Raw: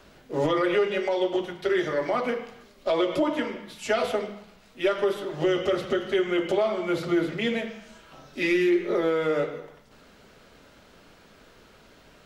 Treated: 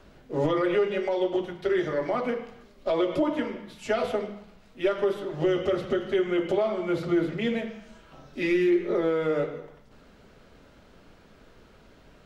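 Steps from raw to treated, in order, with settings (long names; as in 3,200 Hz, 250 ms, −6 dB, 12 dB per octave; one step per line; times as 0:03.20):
spectral tilt −1.5 dB per octave
level −2.5 dB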